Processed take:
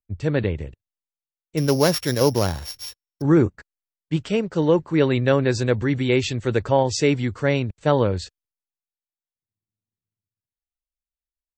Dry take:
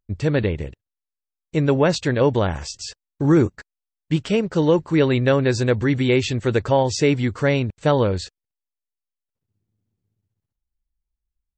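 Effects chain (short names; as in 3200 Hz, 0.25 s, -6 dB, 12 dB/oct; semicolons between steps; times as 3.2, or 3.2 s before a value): 1.57–3.22 sample sorter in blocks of 8 samples; three-band expander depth 40%; gain -1.5 dB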